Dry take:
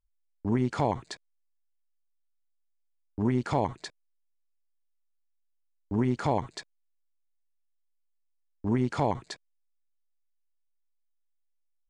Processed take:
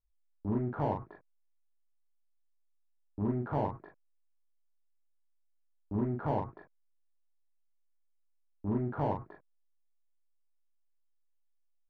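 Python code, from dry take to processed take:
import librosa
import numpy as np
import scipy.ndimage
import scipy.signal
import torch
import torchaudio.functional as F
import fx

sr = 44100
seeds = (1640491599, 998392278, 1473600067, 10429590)

p1 = scipy.signal.sosfilt(scipy.signal.butter(4, 1300.0, 'lowpass', fs=sr, output='sos'), x)
p2 = 10.0 ** (-28.0 / 20.0) * np.tanh(p1 / 10.0 ** (-28.0 / 20.0))
p3 = p1 + (p2 * librosa.db_to_amplitude(-3.5))
p4 = fx.room_early_taps(p3, sr, ms=(19, 41), db=(-5.5, -4.0))
y = p4 * librosa.db_to_amplitude(-9.0)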